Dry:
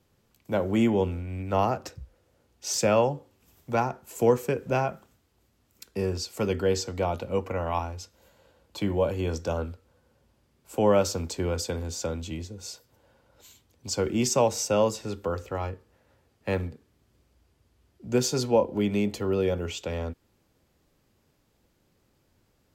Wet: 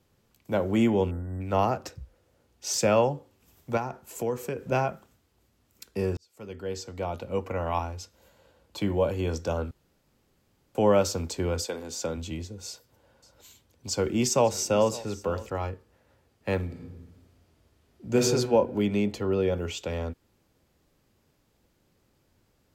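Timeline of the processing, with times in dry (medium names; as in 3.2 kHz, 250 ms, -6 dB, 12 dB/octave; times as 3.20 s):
1.11–1.41 s: spectral selection erased 2–7.3 kHz
3.77–4.72 s: compression 2:1, threshold -31 dBFS
6.17–7.67 s: fade in
9.71–10.75 s: room tone
11.65–12.16 s: high-pass 370 Hz -> 100 Hz
12.67–15.50 s: delay 554 ms -18.5 dB
16.64–18.21 s: reverb throw, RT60 1.3 s, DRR -1 dB
18.86–19.52 s: treble shelf 11 kHz -> 5.4 kHz -8.5 dB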